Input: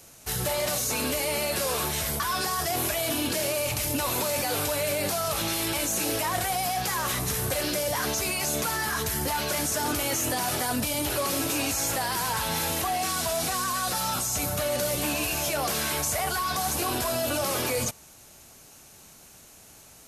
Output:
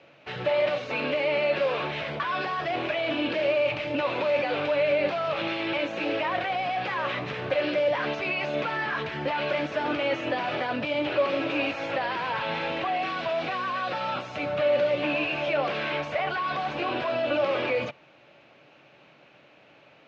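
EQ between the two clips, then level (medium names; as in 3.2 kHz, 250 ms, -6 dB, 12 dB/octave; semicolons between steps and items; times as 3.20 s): distance through air 130 m; cabinet simulation 120–3100 Hz, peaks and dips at 140 Hz +8 dB, 310 Hz +7 dB, 560 Hz +10 dB, 2.5 kHz +4 dB; tilt EQ +2.5 dB/octave; 0.0 dB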